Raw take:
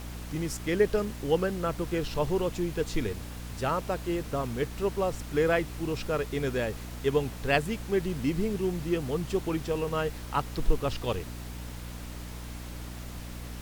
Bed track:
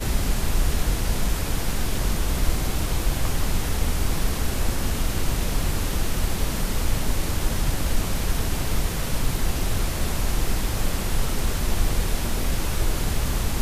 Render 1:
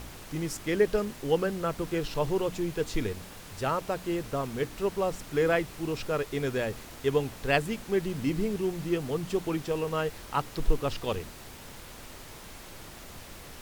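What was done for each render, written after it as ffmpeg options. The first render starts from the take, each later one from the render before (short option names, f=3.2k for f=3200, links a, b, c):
-af "bandreject=f=60:t=h:w=4,bandreject=f=120:t=h:w=4,bandreject=f=180:t=h:w=4,bandreject=f=240:t=h:w=4,bandreject=f=300:t=h:w=4"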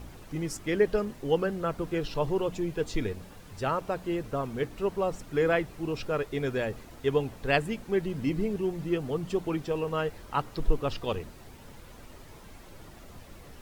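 -af "afftdn=nr=9:nf=-46"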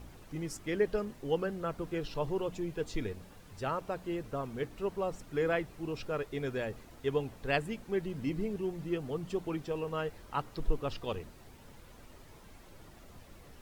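-af "volume=-5.5dB"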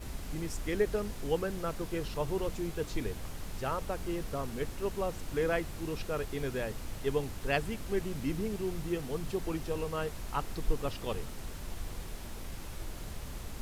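-filter_complex "[1:a]volume=-18dB[a];[0:a][a]amix=inputs=2:normalize=0"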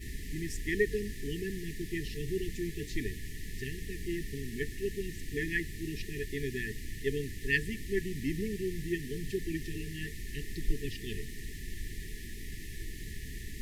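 -af "afftfilt=real='re*(1-between(b*sr/4096,450,1700))':imag='im*(1-between(b*sr/4096,450,1700))':win_size=4096:overlap=0.75,equalizer=f=1.8k:w=4.8:g=11.5"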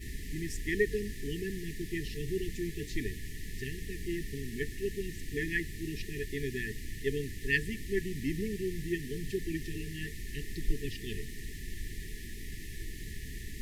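-af anull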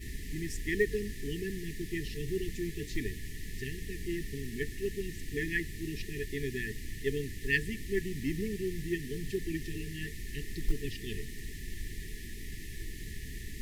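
-af "acrusher=bits=8:mode=log:mix=0:aa=0.000001"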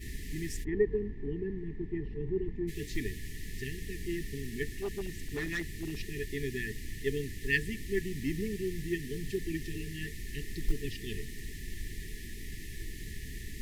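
-filter_complex "[0:a]asplit=3[a][b][c];[a]afade=t=out:st=0.63:d=0.02[d];[b]lowpass=f=900:t=q:w=4.2,afade=t=in:st=0.63:d=0.02,afade=t=out:st=2.67:d=0.02[e];[c]afade=t=in:st=2.67:d=0.02[f];[d][e][f]amix=inputs=3:normalize=0,asettb=1/sr,asplit=3[g][h][i];[g]atrim=end=4.734[j];[h]atrim=start=4.73:end=6,asetpts=PTS-STARTPTS,afade=t=in:d=0.004:c=qsin,afade=t=out:st=1.266:d=0.004:c=qsin,asoftclip=type=hard:threshold=-30.5dB[k];[i]atrim=start=5.996[l];[j][k]acrossfade=d=0.004:c1=hsin:c2=qsin[m];[m][l]acrossfade=d=0.004:c1=qsin:c2=hsin"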